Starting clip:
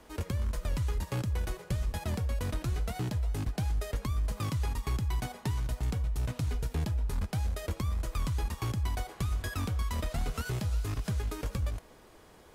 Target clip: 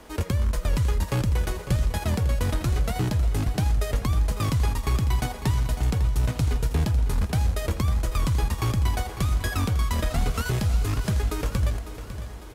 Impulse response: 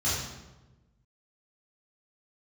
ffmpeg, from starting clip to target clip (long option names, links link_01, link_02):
-af "aecho=1:1:551|1102|1653|2204|2755|3306:0.251|0.138|0.076|0.0418|0.023|0.0126,volume=8dB"